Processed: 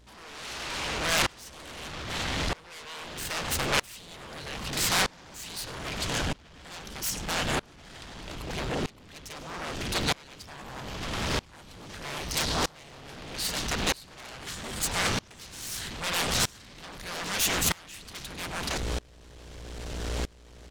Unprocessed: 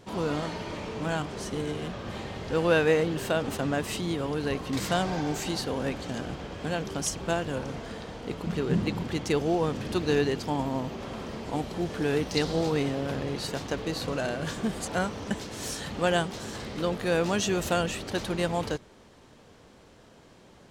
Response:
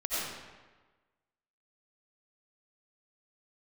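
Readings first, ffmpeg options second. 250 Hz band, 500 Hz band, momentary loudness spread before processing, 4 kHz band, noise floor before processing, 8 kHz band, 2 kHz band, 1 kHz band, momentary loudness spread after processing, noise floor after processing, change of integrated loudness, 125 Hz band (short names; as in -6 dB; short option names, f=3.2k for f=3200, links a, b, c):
-8.5 dB, -9.5 dB, 10 LU, +5.5 dB, -54 dBFS, +6.5 dB, +2.0 dB, -1.0 dB, 18 LU, -52 dBFS, -1.0 dB, -5.0 dB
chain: -af "asubboost=boost=11:cutoff=84,aeval=exprs='val(0)+0.0112*(sin(2*PI*60*n/s)+sin(2*PI*2*60*n/s)/2+sin(2*PI*3*60*n/s)/3+sin(2*PI*4*60*n/s)/4+sin(2*PI*5*60*n/s)/5)':c=same,areverse,acompressor=threshold=-35dB:ratio=12,areverse,aecho=1:1:99:0.112,aeval=exprs='0.0501*sin(PI/2*5.01*val(0)/0.0501)':c=same,tiltshelf=f=1.1k:g=-6.5,aeval=exprs='val(0)*pow(10,-28*if(lt(mod(-0.79*n/s,1),2*abs(-0.79)/1000),1-mod(-0.79*n/s,1)/(2*abs(-0.79)/1000),(mod(-0.79*n/s,1)-2*abs(-0.79)/1000)/(1-2*abs(-0.79)/1000))/20)':c=same,volume=6.5dB"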